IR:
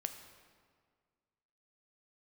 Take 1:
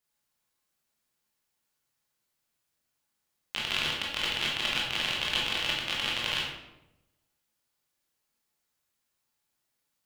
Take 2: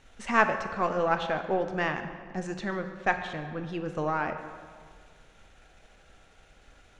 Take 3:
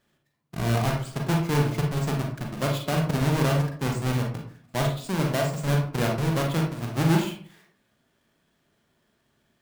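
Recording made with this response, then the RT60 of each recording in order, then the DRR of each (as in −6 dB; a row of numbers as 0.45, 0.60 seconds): 2; 0.90, 1.8, 0.50 seconds; −4.5, 6.5, 0.5 decibels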